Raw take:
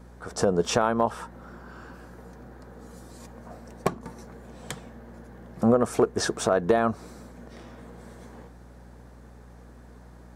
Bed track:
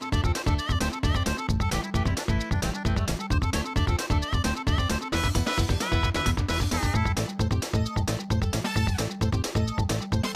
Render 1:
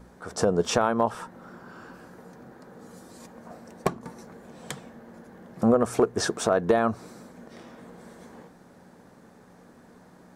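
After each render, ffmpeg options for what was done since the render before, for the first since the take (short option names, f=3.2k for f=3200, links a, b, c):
-af "bandreject=f=60:t=h:w=4,bandreject=f=120:t=h:w=4"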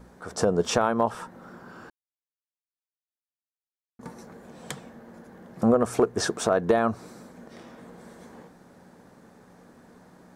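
-filter_complex "[0:a]asplit=3[a][b][c];[a]atrim=end=1.9,asetpts=PTS-STARTPTS,afade=t=out:st=1.896:d=0.004:c=hsin[d];[b]atrim=start=1.9:end=3.99,asetpts=PTS-STARTPTS,volume=0[e];[c]atrim=start=3.99,asetpts=PTS-STARTPTS,afade=t=in:d=0.004:c=hsin[f];[d][e][f]concat=n=3:v=0:a=1"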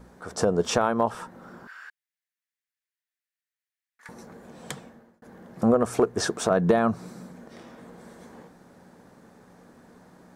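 -filter_complex "[0:a]asettb=1/sr,asplit=3[a][b][c];[a]atrim=end=1.674[d];[b]atrim=start=1.67:end=4.09,asetpts=PTS-STARTPTS,afade=t=in:d=0.004:c=qsin,afade=t=out:st=2.416:d=0.004:c=qsin,highpass=f=1.8k:t=q:w=3.7[e];[c]atrim=start=4.086[f];[d][e]acrossfade=d=0.004:c1=hsin:c2=qsin[g];[g][f]acrossfade=d=0.004:c1=qsin:c2=hsin,asettb=1/sr,asplit=3[h][i][j];[h]atrim=end=6.504[k];[i]atrim=start=6.5:end=7.37,asetpts=PTS-STARTPTS,afade=t=in:d=0.004:c=qsin,afade=t=out:st=0.866:d=0.004:c=qsin,equalizer=f=170:t=o:w=0.57:g=10[l];[j]atrim=start=7.366[m];[k][l]acrossfade=d=0.004:c1=hsin:c2=qsin[n];[n][m]acrossfade=d=0.004:c1=qsin:c2=hsin,asplit=2[o][p];[o]atrim=end=5.22,asetpts=PTS-STARTPTS,afade=t=out:st=4.78:d=0.44[q];[p]atrim=start=5.22,asetpts=PTS-STARTPTS,afade=t=in:d=0.004:c=hsin[r];[q][r]concat=n=2:v=0:a=1"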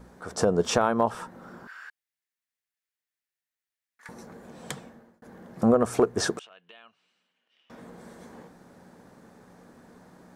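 -filter_complex "[0:a]asettb=1/sr,asplit=3[a][b][c];[a]atrim=end=6.394[d];[b]atrim=start=6.39:end=7.7,asetpts=PTS-STARTPTS,afade=t=in:d=0.004:c=qsin,afade=t=out:st=1.306:d=0.004:c=qsin,bandpass=f=2.9k:t=q:w=11[e];[c]atrim=start=7.696[f];[d][e]acrossfade=d=0.004:c1=hsin:c2=qsin[g];[g][f]acrossfade=d=0.004:c1=qsin:c2=hsin"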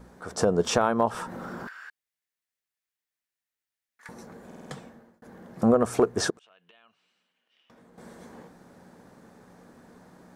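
-filter_complex "[0:a]asettb=1/sr,asplit=3[a][b][c];[a]atrim=end=0.674[d];[b]atrim=start=0.67:end=1.69,asetpts=PTS-STARTPTS,afade=t=in:d=0.004:c=qsin,afade=t=out:st=1.016:d=0.004:c=qsin,acompressor=mode=upward:threshold=-27dB:ratio=2.5:attack=3.2:release=140:knee=2.83:detection=peak[e];[c]atrim=start=1.686[f];[d][e]acrossfade=d=0.004:c1=hsin:c2=qsin[g];[g][f]acrossfade=d=0.004:c1=qsin:c2=hsin,asettb=1/sr,asplit=3[h][i][j];[h]atrim=end=6.304[k];[i]atrim=start=6.3:end=7.98,asetpts=PTS-STARTPTS,afade=t=in:d=0.004:c=qsin,afade=t=out:st=1.676:d=0.004:c=qsin,acompressor=threshold=-53dB:ratio=6:attack=3.2:release=140:knee=1:detection=peak[l];[j]atrim=start=7.976[m];[k][l]acrossfade=d=0.004:c1=hsin:c2=qsin[n];[n][m]acrossfade=d=0.004:c1=qsin:c2=hsin,asplit=6[o][p][q][r][s][t];[o]atrim=end=4.512[u];[p]atrim=start=4.458:end=4.512[v];[q]atrim=start=4.458:end=4.512[w];[r]atrim=start=4.458:end=4.512[x];[s]atrim=start=4.458:end=4.512[y];[t]atrim=start=4.708[z];[u][v]acrossfade=d=0.004:c1=hsin:c2=hsin[aa];[aa][w]acrossfade=d=0.004:c1=hsin:c2=hsin[ab];[ab][x]acrossfade=d=0.004:c1=hsin:c2=hsin[ac];[ac][y]acrossfade=d=0.004:c1=hsin:c2=hsin[ad];[ad][z]acrossfade=d=0.004:c1=hsin:c2=hsin"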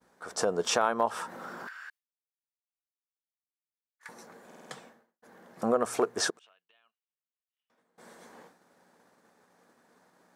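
-af "highpass=f=710:p=1,agate=range=-33dB:threshold=-52dB:ratio=3:detection=peak"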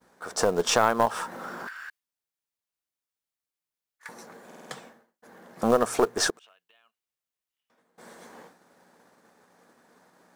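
-filter_complex "[0:a]aeval=exprs='0.299*(cos(1*acos(clip(val(0)/0.299,-1,1)))-cos(1*PI/2))+0.0211*(cos(4*acos(clip(val(0)/0.299,-1,1)))-cos(4*PI/2))':c=same,asplit=2[a][b];[b]acrusher=bits=3:mode=log:mix=0:aa=0.000001,volume=-4dB[c];[a][c]amix=inputs=2:normalize=0"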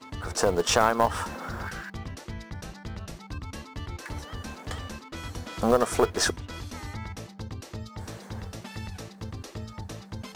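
-filter_complex "[1:a]volume=-12.5dB[a];[0:a][a]amix=inputs=2:normalize=0"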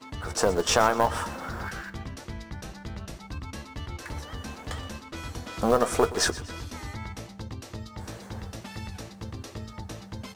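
-filter_complex "[0:a]asplit=2[a][b];[b]adelay=15,volume=-11.5dB[c];[a][c]amix=inputs=2:normalize=0,aecho=1:1:122|244|366|488:0.141|0.0607|0.0261|0.0112"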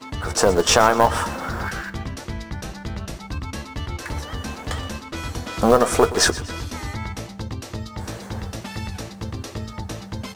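-af "volume=7.5dB,alimiter=limit=-1dB:level=0:latency=1"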